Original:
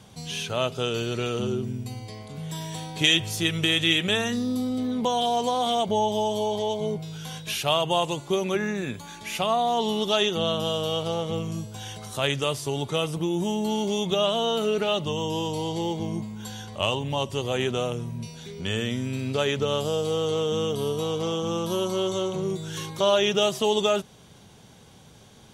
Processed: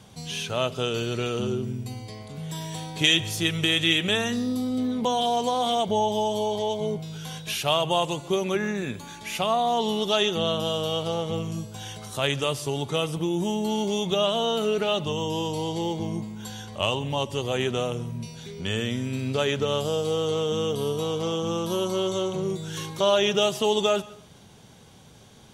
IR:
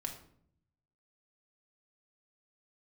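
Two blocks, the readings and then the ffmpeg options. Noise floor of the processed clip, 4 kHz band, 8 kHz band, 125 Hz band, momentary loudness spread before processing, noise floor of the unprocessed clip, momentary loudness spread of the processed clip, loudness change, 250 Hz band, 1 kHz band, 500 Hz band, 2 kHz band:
−50 dBFS, 0.0 dB, 0.0 dB, 0.0 dB, 12 LU, −51 dBFS, 12 LU, 0.0 dB, 0.0 dB, 0.0 dB, 0.0 dB, 0.0 dB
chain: -filter_complex "[0:a]asplit=2[link_01][link_02];[1:a]atrim=start_sample=2205,adelay=134[link_03];[link_02][link_03]afir=irnorm=-1:irlink=0,volume=-19.5dB[link_04];[link_01][link_04]amix=inputs=2:normalize=0"

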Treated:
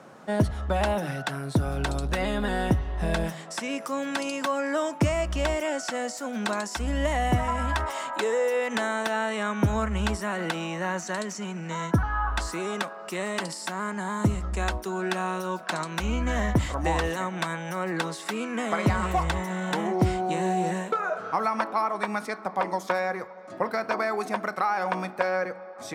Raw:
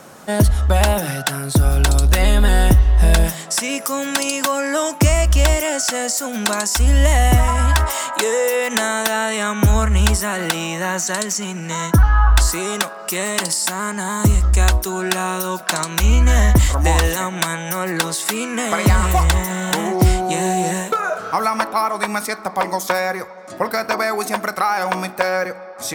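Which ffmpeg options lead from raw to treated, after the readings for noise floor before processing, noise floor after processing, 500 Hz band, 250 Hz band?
−34 dBFS, −41 dBFS, −6.5 dB, −6.5 dB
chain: -af "highpass=110,aemphasis=mode=reproduction:type=75fm,volume=-7dB"

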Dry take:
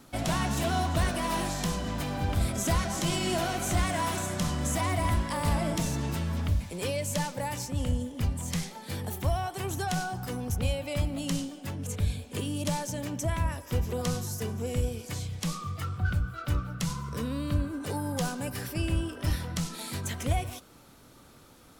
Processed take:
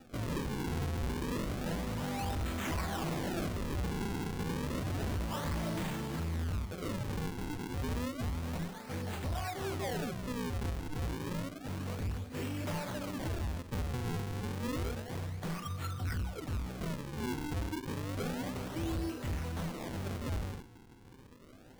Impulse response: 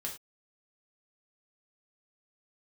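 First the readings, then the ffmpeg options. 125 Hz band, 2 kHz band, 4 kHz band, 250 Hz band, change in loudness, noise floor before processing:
−6.0 dB, −6.5 dB, −8.5 dB, −4.5 dB, −6.5 dB, −54 dBFS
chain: -filter_complex "[1:a]atrim=start_sample=2205,asetrate=52920,aresample=44100[link_01];[0:a][link_01]afir=irnorm=-1:irlink=0,acrusher=samples=41:mix=1:aa=0.000001:lfo=1:lforange=65.6:lforate=0.3,asoftclip=type=tanh:threshold=-31.5dB"

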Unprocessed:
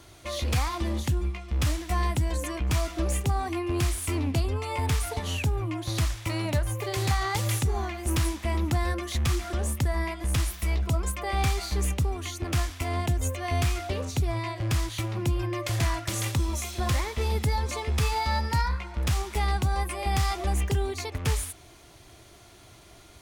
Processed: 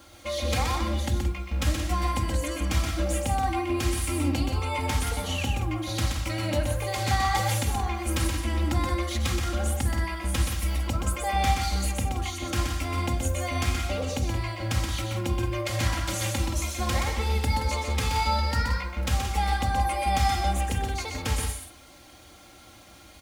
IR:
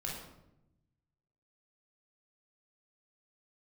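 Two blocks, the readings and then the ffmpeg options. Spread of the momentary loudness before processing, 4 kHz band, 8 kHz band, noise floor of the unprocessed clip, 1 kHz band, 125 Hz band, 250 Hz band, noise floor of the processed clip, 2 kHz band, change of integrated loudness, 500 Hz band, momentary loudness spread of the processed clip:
4 LU, +2.5 dB, +1.5 dB, −52 dBFS, +3.5 dB, −0.5 dB, +1.5 dB, −50 dBFS, +2.0 dB, +1.0 dB, +0.5 dB, 4 LU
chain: -filter_complex "[0:a]highpass=frequency=130:poles=1,highshelf=frequency=8900:gain=-3.5,aecho=1:1:3.7:0.91,acrusher=bits=9:mix=0:aa=0.000001,aecho=1:1:125.4|174.9:0.562|0.316,asplit=2[link_01][link_02];[1:a]atrim=start_sample=2205,atrim=end_sample=3969,lowshelf=frequency=400:gain=9[link_03];[link_02][link_03]afir=irnorm=-1:irlink=0,volume=-9.5dB[link_04];[link_01][link_04]amix=inputs=2:normalize=0,volume=-3dB"

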